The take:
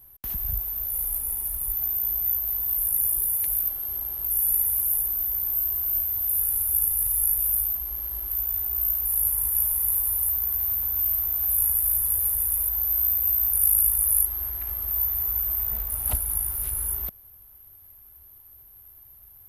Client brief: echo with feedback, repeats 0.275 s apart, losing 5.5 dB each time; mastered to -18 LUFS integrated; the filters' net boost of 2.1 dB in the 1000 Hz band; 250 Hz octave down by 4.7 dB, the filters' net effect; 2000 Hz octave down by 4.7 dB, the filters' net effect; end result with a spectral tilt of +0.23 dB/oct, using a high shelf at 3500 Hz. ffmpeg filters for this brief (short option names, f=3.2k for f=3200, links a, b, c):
-af "equalizer=f=250:t=o:g=-7.5,equalizer=f=1k:t=o:g=5,equalizer=f=2k:t=o:g=-6.5,highshelf=f=3.5k:g=-6,aecho=1:1:275|550|825|1100|1375|1650|1925:0.531|0.281|0.149|0.079|0.0419|0.0222|0.0118,volume=8.5dB"